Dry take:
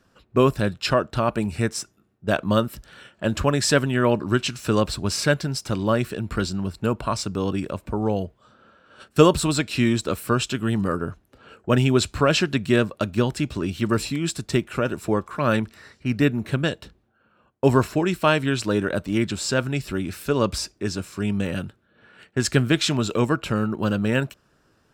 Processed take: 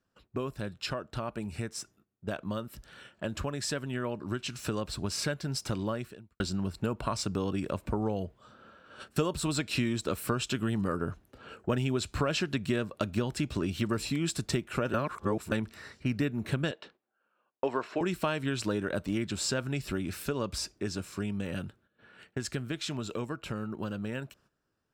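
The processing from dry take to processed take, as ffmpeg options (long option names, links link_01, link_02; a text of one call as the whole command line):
ffmpeg -i in.wav -filter_complex "[0:a]asettb=1/sr,asplit=3[link_01][link_02][link_03];[link_01]atrim=end=16.714[link_04];[link_02]atrim=start=16.71:end=18.01,asetpts=PTS-STARTPTS,afade=type=in:duration=0.004:curve=qsin,afade=type=out:start_time=1.296:duration=0.004:curve=qsin,highpass=410,lowpass=3700[link_05];[link_03]atrim=start=18.006[link_06];[link_04][link_05]acrossfade=duration=0.004:curve1=hsin:curve2=qsin[link_07];[link_07][link_06]acrossfade=duration=0.004:curve1=qsin:curve2=hsin,asplit=4[link_08][link_09][link_10][link_11];[link_08]atrim=end=6.4,asetpts=PTS-STARTPTS,afade=type=out:start_time=5.79:duration=0.61:curve=qua[link_12];[link_09]atrim=start=6.4:end=14.942,asetpts=PTS-STARTPTS,afade=type=in:duration=0.004:curve=hsin[link_13];[link_10]atrim=start=14.938:end=15.522,asetpts=PTS-STARTPTS,areverse[link_14];[link_11]atrim=start=15.518[link_15];[link_12][link_13]concat=n=2:v=0:a=1[link_16];[link_16][link_14]acrossfade=duration=0.004:curve1=hsin:curve2=hsin[link_17];[link_17][link_15]acrossfade=duration=0.004:curve1=hsin:curve2=hsin,acompressor=threshold=-26dB:ratio=6,agate=range=-12dB:threshold=-57dB:ratio=16:detection=peak,dynaudnorm=framelen=840:gausssize=13:maxgain=5.5dB,volume=-6dB" out.wav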